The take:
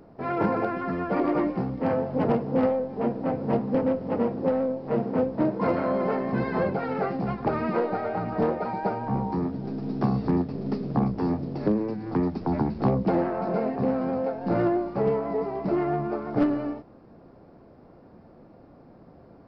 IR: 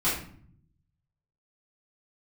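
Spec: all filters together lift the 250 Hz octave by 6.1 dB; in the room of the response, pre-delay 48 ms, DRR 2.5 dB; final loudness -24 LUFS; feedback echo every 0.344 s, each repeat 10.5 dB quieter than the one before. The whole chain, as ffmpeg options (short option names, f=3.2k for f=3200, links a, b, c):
-filter_complex "[0:a]equalizer=f=250:t=o:g=7.5,aecho=1:1:344|688|1032:0.299|0.0896|0.0269,asplit=2[a][b];[1:a]atrim=start_sample=2205,adelay=48[c];[b][c]afir=irnorm=-1:irlink=0,volume=-14dB[d];[a][d]amix=inputs=2:normalize=0,volume=-4.5dB"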